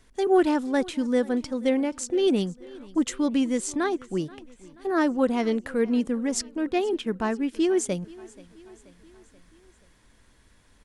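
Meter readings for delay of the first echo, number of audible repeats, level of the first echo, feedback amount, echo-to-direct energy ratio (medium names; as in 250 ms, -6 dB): 481 ms, 3, -22.0 dB, 57%, -20.5 dB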